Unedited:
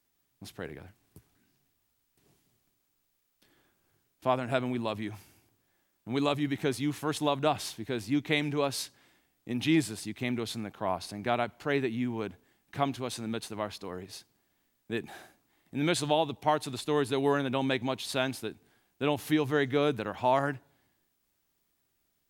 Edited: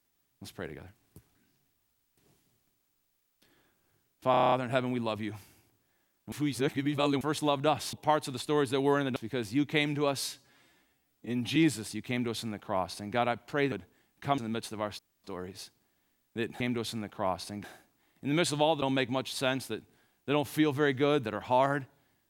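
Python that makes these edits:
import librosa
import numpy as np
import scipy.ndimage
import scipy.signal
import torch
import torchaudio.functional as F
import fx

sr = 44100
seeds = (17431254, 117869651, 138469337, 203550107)

y = fx.edit(x, sr, fx.stutter(start_s=4.31, slice_s=0.03, count=8),
    fx.reverse_span(start_s=6.11, length_s=0.89),
    fx.stretch_span(start_s=8.8, length_s=0.88, factor=1.5),
    fx.duplicate(start_s=10.22, length_s=1.04, to_s=15.14),
    fx.cut(start_s=11.84, length_s=0.39),
    fx.cut(start_s=12.89, length_s=0.28),
    fx.insert_room_tone(at_s=13.78, length_s=0.25),
    fx.move(start_s=16.32, length_s=1.23, to_s=7.72), tone=tone)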